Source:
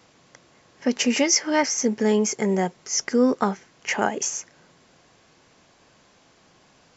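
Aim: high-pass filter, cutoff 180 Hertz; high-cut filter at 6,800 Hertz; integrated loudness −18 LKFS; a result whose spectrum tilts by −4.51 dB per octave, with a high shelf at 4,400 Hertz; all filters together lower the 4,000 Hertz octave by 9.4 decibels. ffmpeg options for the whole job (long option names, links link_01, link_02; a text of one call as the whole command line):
ffmpeg -i in.wav -af "highpass=180,lowpass=6800,equalizer=frequency=4000:width_type=o:gain=-7.5,highshelf=frequency=4400:gain=-8.5,volume=7dB" out.wav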